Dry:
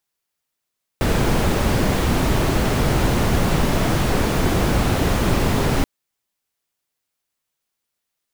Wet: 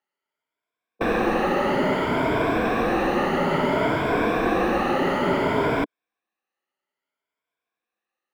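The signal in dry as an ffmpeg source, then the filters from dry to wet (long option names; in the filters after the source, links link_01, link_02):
-f lavfi -i "anoisesrc=color=brown:amplitude=0.624:duration=4.83:sample_rate=44100:seed=1"
-filter_complex "[0:a]afftfilt=real='re*pow(10,12/40*sin(2*PI*(1.7*log(max(b,1)*sr/1024/100)/log(2)-(0.59)*(pts-256)/sr)))':imag='im*pow(10,12/40*sin(2*PI*(1.7*log(max(b,1)*sr/1024/100)/log(2)-(0.59)*(pts-256)/sr)))':win_size=1024:overlap=0.75,acrossover=split=220 2800:gain=0.1 1 0.0891[link_01][link_02][link_03];[link_01][link_02][link_03]amix=inputs=3:normalize=0"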